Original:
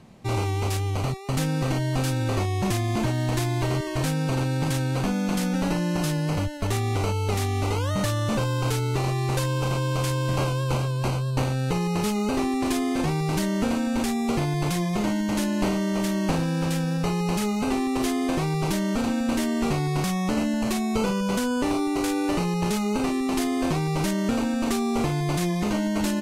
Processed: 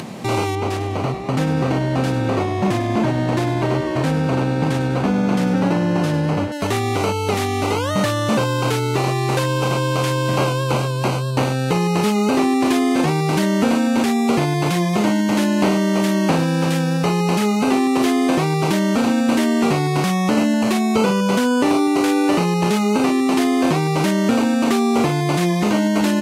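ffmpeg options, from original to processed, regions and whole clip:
ffmpeg -i in.wav -filter_complex "[0:a]asettb=1/sr,asplit=3[link_01][link_02][link_03];[link_01]atrim=end=0.554[link_04];[link_02]atrim=start=0.55:end=6.52,asetpts=PTS-STARTPTS,afade=type=in:duration=0.004:curve=qsin,afade=type=out:start_time=5.966:duration=0.004:curve=qsin,lowpass=frequency=1700:poles=1,asplit=8[link_05][link_06][link_07][link_08][link_09][link_10][link_11][link_12];[link_06]adelay=99,afreqshift=-71,volume=-10.5dB[link_13];[link_07]adelay=198,afreqshift=-142,volume=-15.2dB[link_14];[link_08]adelay=297,afreqshift=-213,volume=-20dB[link_15];[link_09]adelay=396,afreqshift=-284,volume=-24.7dB[link_16];[link_10]adelay=495,afreqshift=-355,volume=-29.4dB[link_17];[link_11]adelay=594,afreqshift=-426,volume=-34.2dB[link_18];[link_12]adelay=693,afreqshift=-497,volume=-38.9dB[link_19];[link_05][link_13][link_14][link_15][link_16][link_17][link_18][link_19]amix=inputs=8:normalize=0,atrim=end_sample=263277[link_20];[link_03]atrim=start=6.516[link_21];[link_04][link_20]acrossfade=duration=0.004:curve1=hsin:curve2=qsin[link_22];[link_22][link_21]acrossfade=duration=0.004:curve1=qsin:curve2=hsin,acrossover=split=4000[link_23][link_24];[link_24]acompressor=threshold=-39dB:ratio=4:attack=1:release=60[link_25];[link_23][link_25]amix=inputs=2:normalize=0,highpass=160,acompressor=mode=upward:threshold=-29dB:ratio=2.5,volume=8.5dB" out.wav

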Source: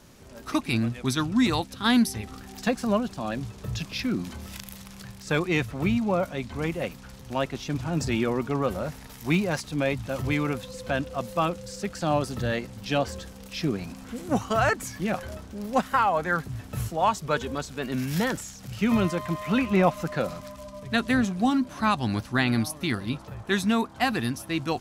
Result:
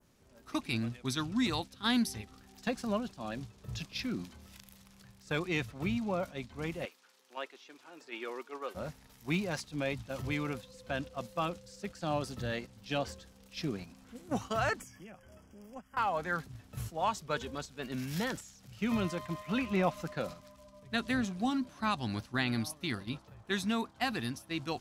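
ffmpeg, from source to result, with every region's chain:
ffmpeg -i in.wav -filter_complex "[0:a]asettb=1/sr,asplit=3[link_01][link_02][link_03];[link_01]atrim=end=6.854[link_04];[link_02]atrim=start=6.85:end=8.75,asetpts=PTS-STARTPTS,afade=type=in:duration=0.004:curve=qsin,afade=type=out:start_time=1.896:duration=0.004:curve=qsin,highpass=frequency=380:width=0.5412,highpass=frequency=380:width=1.3066,equalizer=frequency=640:width_type=o:width=0.82:gain=-6.5,acrossover=split=3200[link_05][link_06];[link_06]acompressor=threshold=-47dB:ratio=4:attack=1:release=60[link_07];[link_05][link_07]amix=inputs=2:normalize=0[link_08];[link_03]atrim=start=8.746[link_09];[link_04][link_08]acrossfade=duration=0.004:curve1=hsin:curve2=qsin[link_10];[link_10][link_09]acrossfade=duration=0.004:curve1=qsin:curve2=hsin,asettb=1/sr,asplit=3[link_11][link_12][link_13];[link_11]atrim=end=14.804[link_14];[link_12]atrim=start=14.8:end=15.97,asetpts=PTS-STARTPTS,afade=type=in:duration=0.004:curve=qsin,afade=type=out:start_time=1.166:duration=0.004:curve=qsin,asuperstop=centerf=4000:order=20:qfactor=3.1,acrossover=split=87|290[link_15][link_16][link_17];[link_15]acompressor=threshold=-51dB:ratio=4[link_18];[link_16]acompressor=threshold=-41dB:ratio=4[link_19];[link_17]acompressor=threshold=-38dB:ratio=4[link_20];[link_18][link_19][link_20]amix=inputs=3:normalize=0[link_21];[link_13]atrim=start=15.966[link_22];[link_14][link_21]acrossfade=duration=0.004:curve1=hsin:curve2=qsin[link_23];[link_23][link_22]acrossfade=duration=0.004:curve1=qsin:curve2=hsin,adynamicequalizer=threshold=0.00891:dfrequency=4200:dqfactor=0.78:tfrequency=4200:tqfactor=0.78:attack=5:release=100:ratio=0.375:range=2:mode=boostabove:tftype=bell,agate=range=-6dB:threshold=-32dB:ratio=16:detection=peak,volume=-9dB" out.wav

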